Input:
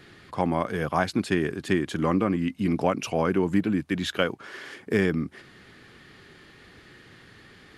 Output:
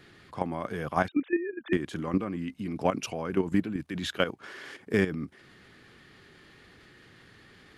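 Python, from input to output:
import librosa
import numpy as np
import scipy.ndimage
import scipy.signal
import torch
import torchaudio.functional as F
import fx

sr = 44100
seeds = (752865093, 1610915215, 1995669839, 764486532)

y = fx.sine_speech(x, sr, at=(1.08, 1.73))
y = fx.level_steps(y, sr, step_db=11)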